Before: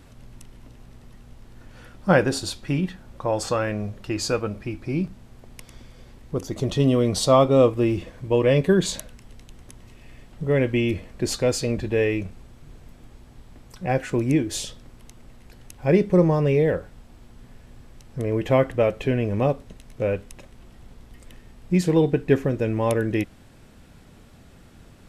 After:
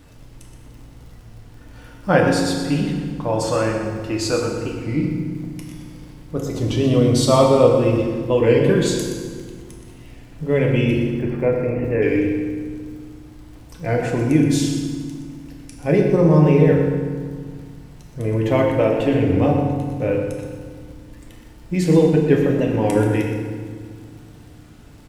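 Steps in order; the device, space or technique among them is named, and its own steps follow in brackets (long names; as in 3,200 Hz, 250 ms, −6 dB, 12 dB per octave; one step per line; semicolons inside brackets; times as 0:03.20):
0:11.11–0:12.04: elliptic low-pass filter 2,300 Hz
repeating echo 123 ms, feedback 17%, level −10.5 dB
warped LP (wow of a warped record 33 1/3 rpm, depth 160 cents; surface crackle 38 per second −41 dBFS; pink noise bed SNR 44 dB)
feedback delay network reverb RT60 1.8 s, low-frequency decay 1.55×, high-frequency decay 0.75×, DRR 0 dB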